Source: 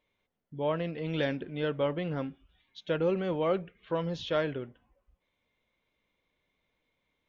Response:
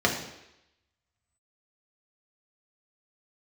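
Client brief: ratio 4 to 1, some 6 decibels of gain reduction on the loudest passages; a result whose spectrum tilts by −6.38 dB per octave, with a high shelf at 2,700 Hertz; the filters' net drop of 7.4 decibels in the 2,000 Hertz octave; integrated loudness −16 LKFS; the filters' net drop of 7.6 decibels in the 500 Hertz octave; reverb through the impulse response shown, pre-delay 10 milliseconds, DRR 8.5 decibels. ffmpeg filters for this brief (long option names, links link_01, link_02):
-filter_complex "[0:a]equalizer=frequency=500:width_type=o:gain=-8.5,equalizer=frequency=2000:width_type=o:gain=-7,highshelf=frequency=2700:gain=-5.5,acompressor=threshold=-37dB:ratio=4,asplit=2[link_01][link_02];[1:a]atrim=start_sample=2205,adelay=10[link_03];[link_02][link_03]afir=irnorm=-1:irlink=0,volume=-23dB[link_04];[link_01][link_04]amix=inputs=2:normalize=0,volume=25dB"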